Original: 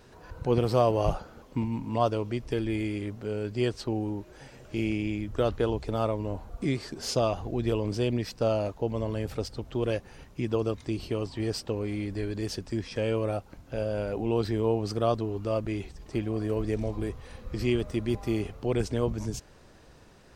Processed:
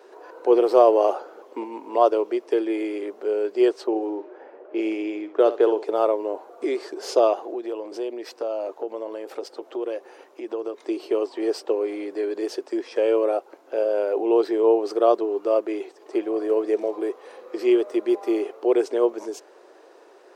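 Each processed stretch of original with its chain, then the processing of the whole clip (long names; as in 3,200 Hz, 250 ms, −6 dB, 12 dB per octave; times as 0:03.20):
0:03.87–0:05.83: low-pass that shuts in the quiet parts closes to 1,100 Hz, open at −22.5 dBFS + flutter between parallel walls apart 10.9 metres, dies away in 0.28 s
0:07.39–0:10.81: downward compressor, threshold −31 dBFS + notch filter 420 Hz, Q 14
whole clip: elliptic high-pass filter 360 Hz, stop band 60 dB; tilt shelving filter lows +7 dB, about 1,200 Hz; level +5.5 dB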